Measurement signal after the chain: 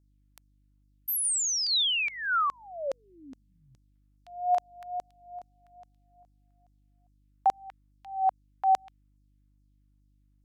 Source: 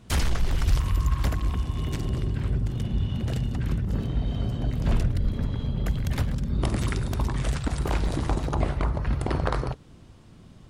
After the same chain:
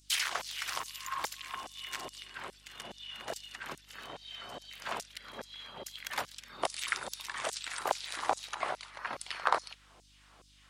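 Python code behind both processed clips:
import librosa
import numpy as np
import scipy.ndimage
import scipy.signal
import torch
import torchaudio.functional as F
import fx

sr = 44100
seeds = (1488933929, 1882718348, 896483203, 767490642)

y = fx.wow_flutter(x, sr, seeds[0], rate_hz=2.1, depth_cents=19.0)
y = fx.filter_lfo_highpass(y, sr, shape='saw_down', hz=2.4, low_hz=600.0, high_hz=6300.0, q=1.6)
y = fx.dmg_buzz(y, sr, base_hz=50.0, harmonics=6, level_db=-66.0, tilt_db=-7, odd_only=False)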